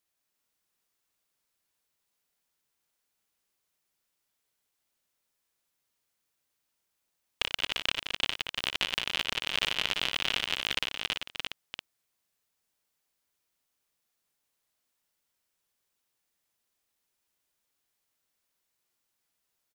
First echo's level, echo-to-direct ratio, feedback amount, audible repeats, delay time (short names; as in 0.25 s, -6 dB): -8.5 dB, -1.5 dB, no steady repeat, 5, 59 ms